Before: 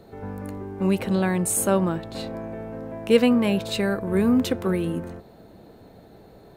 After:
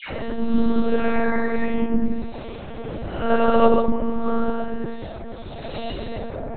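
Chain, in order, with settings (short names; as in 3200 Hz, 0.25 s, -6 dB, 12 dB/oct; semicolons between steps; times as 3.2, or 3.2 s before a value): Paulstretch 5×, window 0.10 s, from 1.03; dispersion lows, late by 0.128 s, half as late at 1000 Hz; monotone LPC vocoder at 8 kHz 230 Hz; gain +3.5 dB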